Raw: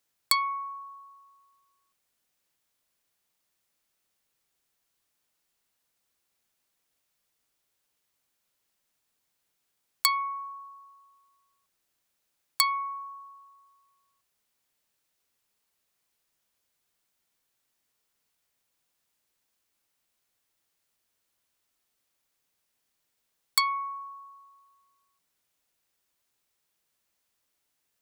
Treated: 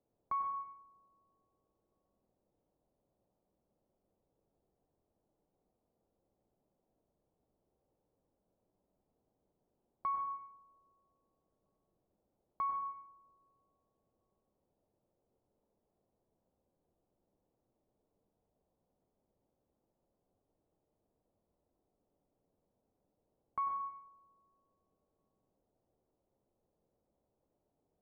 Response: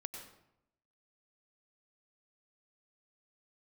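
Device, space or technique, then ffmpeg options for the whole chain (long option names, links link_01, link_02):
next room: -filter_complex "[0:a]lowpass=frequency=700:width=0.5412,lowpass=frequency=700:width=1.3066[link_01];[1:a]atrim=start_sample=2205[link_02];[link_01][link_02]afir=irnorm=-1:irlink=0,volume=12.5dB"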